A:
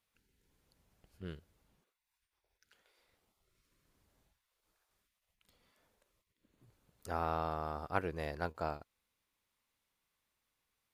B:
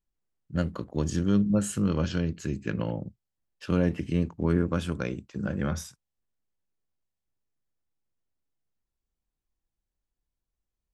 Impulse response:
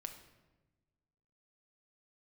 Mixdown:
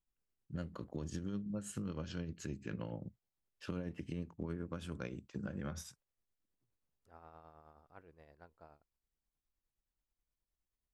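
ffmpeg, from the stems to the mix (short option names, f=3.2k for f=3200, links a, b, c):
-filter_complex "[0:a]highshelf=f=4.1k:g=-11.5,volume=-19.5dB[a];[1:a]volume=-4dB[b];[a][b]amix=inputs=2:normalize=0,tremolo=f=9.5:d=0.45,acompressor=threshold=-38dB:ratio=6"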